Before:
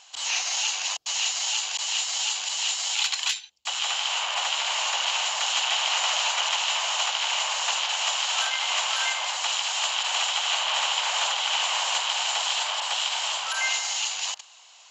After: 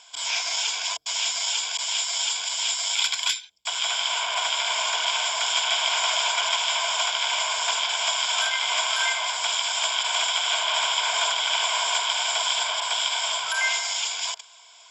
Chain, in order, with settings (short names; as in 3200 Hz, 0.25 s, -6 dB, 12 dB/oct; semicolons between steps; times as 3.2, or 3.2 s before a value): ripple EQ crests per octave 1.7, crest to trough 13 dB